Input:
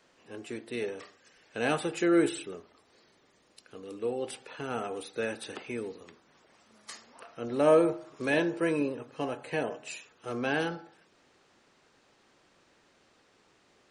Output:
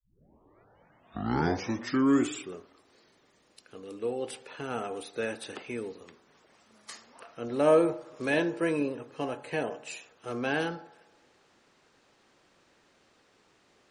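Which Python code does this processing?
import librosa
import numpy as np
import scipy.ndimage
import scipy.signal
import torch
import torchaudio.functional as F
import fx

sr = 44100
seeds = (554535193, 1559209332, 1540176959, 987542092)

y = fx.tape_start_head(x, sr, length_s=2.6)
y = fx.echo_wet_bandpass(y, sr, ms=79, feedback_pct=70, hz=770.0, wet_db=-22.5)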